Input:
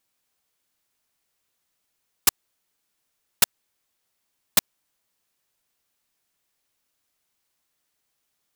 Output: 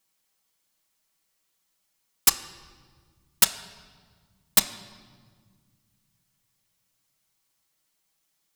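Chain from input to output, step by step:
bass and treble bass 0 dB, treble +4 dB
convolution reverb, pre-delay 5 ms, DRR 2.5 dB
level −2.5 dB

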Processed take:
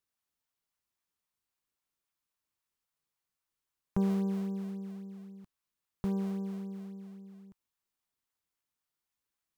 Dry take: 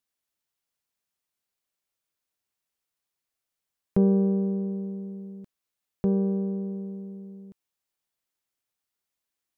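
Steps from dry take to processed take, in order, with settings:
octave-band graphic EQ 125/250/500/1,000 Hz −3/−5/−12/+6 dB
in parallel at −12 dB: sample-and-hold swept by an LFO 29×, swing 160% 3.7 Hz
on the sum: level −4 dB

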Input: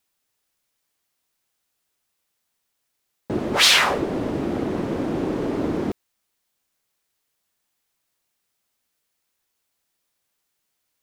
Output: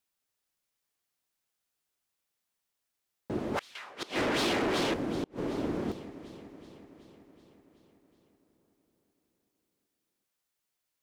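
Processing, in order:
delay that swaps between a low-pass and a high-pass 188 ms, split 1,800 Hz, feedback 79%, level −12 dB
gate with flip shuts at −12 dBFS, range −32 dB
0:03.75–0:04.94: mid-hump overdrive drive 21 dB, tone 5,500 Hz, clips at −12.5 dBFS
level −8.5 dB

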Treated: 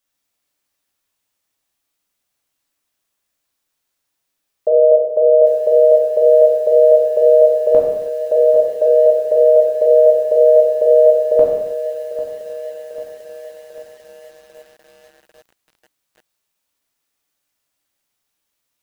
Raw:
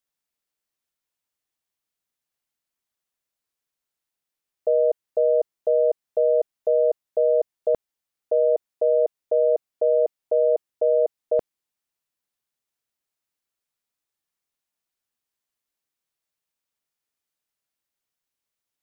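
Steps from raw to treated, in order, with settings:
reverb whose tail is shaped and stops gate 350 ms falling, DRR −3.5 dB
feedback echo at a low word length 795 ms, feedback 55%, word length 7 bits, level −14 dB
level +6 dB

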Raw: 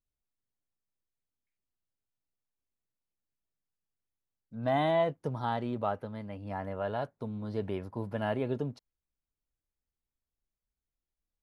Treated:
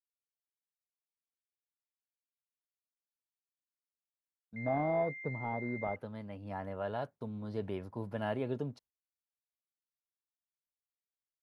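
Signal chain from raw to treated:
noise gate with hold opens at −46 dBFS
high-pass filter 62 Hz
0:04.56–0:05.96: switching amplifier with a slow clock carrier 2,100 Hz
level −3.5 dB

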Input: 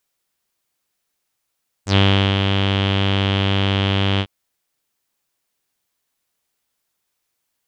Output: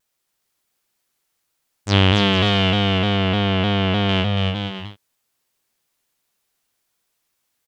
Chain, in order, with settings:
0:02.70–0:04.09: high-shelf EQ 3,500 Hz −11 dB
bouncing-ball delay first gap 280 ms, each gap 0.65×, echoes 5
pitch modulation by a square or saw wave saw down 3.3 Hz, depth 100 cents

